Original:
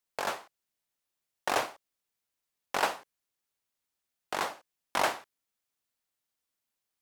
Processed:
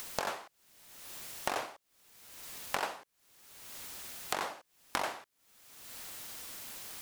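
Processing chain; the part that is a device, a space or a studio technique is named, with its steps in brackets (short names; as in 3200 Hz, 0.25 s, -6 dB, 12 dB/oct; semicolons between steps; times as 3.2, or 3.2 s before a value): upward and downward compression (upward compressor, threshold -37 dBFS; compressor 6:1, threshold -47 dBFS, peak gain reduction 22.5 dB); gain +13.5 dB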